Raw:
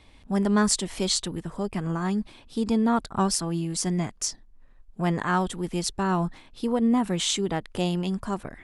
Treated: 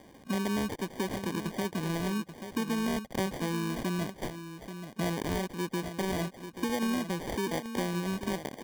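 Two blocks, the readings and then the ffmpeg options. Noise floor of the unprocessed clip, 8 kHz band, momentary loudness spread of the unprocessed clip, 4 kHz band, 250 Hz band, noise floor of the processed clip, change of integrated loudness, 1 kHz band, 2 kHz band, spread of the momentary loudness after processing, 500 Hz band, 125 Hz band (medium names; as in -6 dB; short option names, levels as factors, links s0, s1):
-53 dBFS, -13.5 dB, 8 LU, -9.5 dB, -6.5 dB, -54 dBFS, -7.0 dB, -7.5 dB, -2.5 dB, 6 LU, -4.5 dB, -6.0 dB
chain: -filter_complex "[0:a]highpass=190,equalizer=f=5100:t=o:w=3:g=-12,acompressor=threshold=0.01:ratio=4,asplit=2[s0][s1];[s1]aecho=0:1:834:0.316[s2];[s0][s2]amix=inputs=2:normalize=0,acrusher=samples=33:mix=1:aa=0.000001,volume=2.66"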